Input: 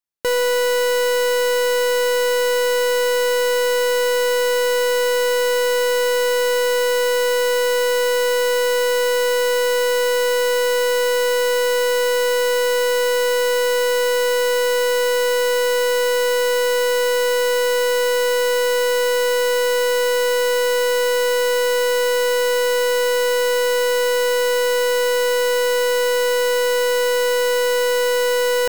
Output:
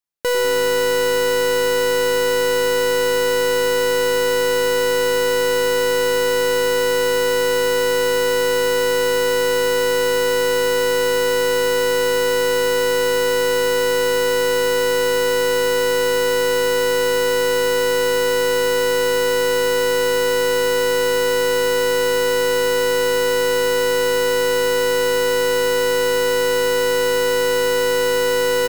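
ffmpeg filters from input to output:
-filter_complex "[0:a]asplit=6[s0][s1][s2][s3][s4][s5];[s1]adelay=99,afreqshift=-110,volume=0.224[s6];[s2]adelay=198,afreqshift=-220,volume=0.104[s7];[s3]adelay=297,afreqshift=-330,volume=0.0473[s8];[s4]adelay=396,afreqshift=-440,volume=0.0219[s9];[s5]adelay=495,afreqshift=-550,volume=0.01[s10];[s0][s6][s7][s8][s9][s10]amix=inputs=6:normalize=0"

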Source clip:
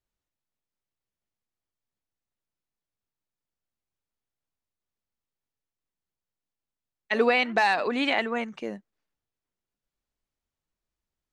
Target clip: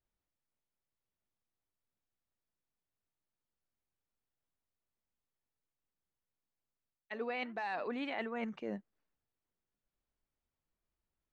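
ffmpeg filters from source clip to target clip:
-af "aemphasis=mode=reproduction:type=75fm,areverse,acompressor=threshold=0.0224:ratio=16,areverse,volume=0.794"

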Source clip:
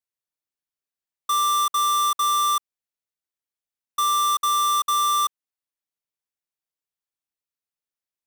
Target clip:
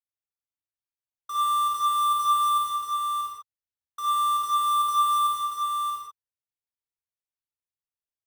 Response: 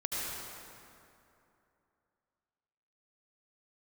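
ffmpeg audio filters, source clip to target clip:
-filter_complex "[0:a]equalizer=f=930:w=5.6:g=6.5,aeval=exprs='0.168*(cos(1*acos(clip(val(0)/0.168,-1,1)))-cos(1*PI/2))+0.0133*(cos(5*acos(clip(val(0)/0.168,-1,1)))-cos(5*PI/2))+0.0473*(cos(7*acos(clip(val(0)/0.168,-1,1)))-cos(7*PI/2))':c=same,lowshelf=f=140:t=q:w=3:g=8,aecho=1:1:632:0.631[s0];[1:a]atrim=start_sample=2205,afade=t=out:st=0.41:d=0.01,atrim=end_sample=18522,asetrate=74970,aresample=44100[s1];[s0][s1]afir=irnorm=-1:irlink=0,volume=0.398"

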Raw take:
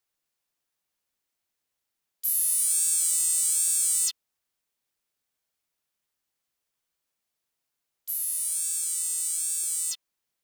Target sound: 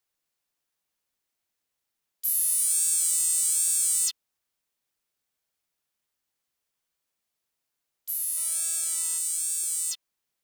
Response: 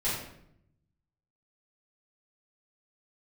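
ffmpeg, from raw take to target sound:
-filter_complex "[0:a]asplit=3[s0][s1][s2];[s0]afade=t=out:st=8.36:d=0.02[s3];[s1]equalizer=f=650:w=0.35:g=12,afade=t=in:st=8.36:d=0.02,afade=t=out:st=9.17:d=0.02[s4];[s2]afade=t=in:st=9.17:d=0.02[s5];[s3][s4][s5]amix=inputs=3:normalize=0"

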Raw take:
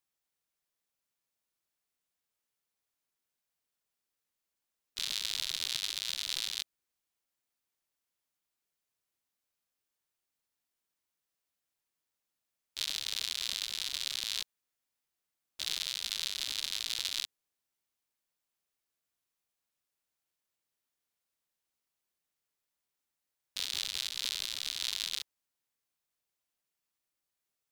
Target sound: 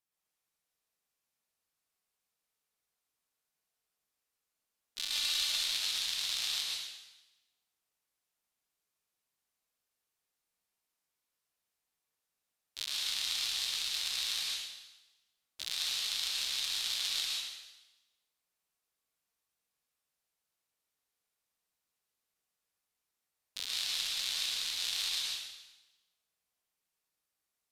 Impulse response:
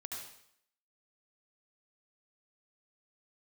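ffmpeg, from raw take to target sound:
-filter_complex "[0:a]asettb=1/sr,asplit=3[s0][s1][s2];[s0]atrim=end=4.984[s3];[s1]atrim=start=4.98:end=5.52,asetpts=PTS-STARTPTS,afade=t=in:d=0.004:c=qsin,afade=t=out:st=0.536:d=0.004:c=qsin,aecho=1:1:3.4:0.7,atrim=end_sample=23814[s4];[s2]atrim=start=5.516[s5];[s3][s4]acrossfade=d=0.004:c1=hsin:c2=qsin[s6];[s6][s5]acrossfade=d=0.004:c1=qsin:c2=hsin[s7];[1:a]atrim=start_sample=2205,asetrate=28665,aresample=44100[s8];[s7][s8]afir=irnorm=-1:irlink=0"

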